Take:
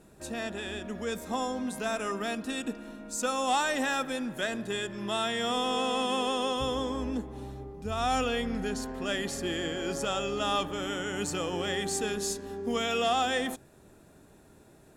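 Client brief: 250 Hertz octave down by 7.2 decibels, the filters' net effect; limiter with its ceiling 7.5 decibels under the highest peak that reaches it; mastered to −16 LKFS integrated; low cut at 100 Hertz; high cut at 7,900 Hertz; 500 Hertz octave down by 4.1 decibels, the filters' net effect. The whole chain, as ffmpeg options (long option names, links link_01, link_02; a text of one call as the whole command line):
ffmpeg -i in.wav -af "highpass=100,lowpass=7900,equalizer=frequency=250:width_type=o:gain=-7.5,equalizer=frequency=500:width_type=o:gain=-3,volume=19dB,alimiter=limit=-5.5dB:level=0:latency=1" out.wav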